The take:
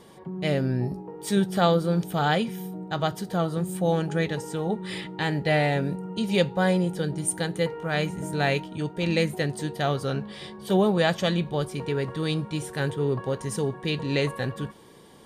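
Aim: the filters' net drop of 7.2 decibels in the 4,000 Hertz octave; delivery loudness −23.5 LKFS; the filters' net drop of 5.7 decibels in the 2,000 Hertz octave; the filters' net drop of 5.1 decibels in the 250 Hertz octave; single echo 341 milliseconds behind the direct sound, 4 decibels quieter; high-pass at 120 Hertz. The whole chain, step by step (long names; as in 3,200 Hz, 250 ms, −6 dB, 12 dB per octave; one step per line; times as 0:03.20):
high-pass filter 120 Hz
parametric band 250 Hz −7.5 dB
parametric band 2,000 Hz −5.5 dB
parametric band 4,000 Hz −7 dB
single-tap delay 341 ms −4 dB
level +5 dB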